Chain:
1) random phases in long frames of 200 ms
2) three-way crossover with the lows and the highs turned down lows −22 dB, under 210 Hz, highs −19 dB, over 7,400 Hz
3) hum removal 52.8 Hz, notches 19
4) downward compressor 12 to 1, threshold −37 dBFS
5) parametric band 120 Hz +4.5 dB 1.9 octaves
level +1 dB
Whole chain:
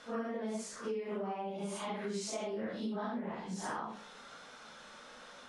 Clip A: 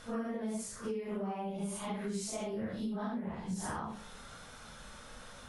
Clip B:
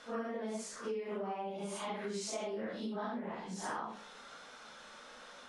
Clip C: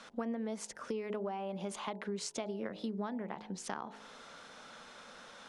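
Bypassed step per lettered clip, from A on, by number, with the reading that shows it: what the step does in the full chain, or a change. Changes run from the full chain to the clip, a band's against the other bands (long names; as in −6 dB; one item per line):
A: 2, 125 Hz band +6.0 dB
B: 5, 125 Hz band −3.0 dB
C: 1, change in crest factor +5.0 dB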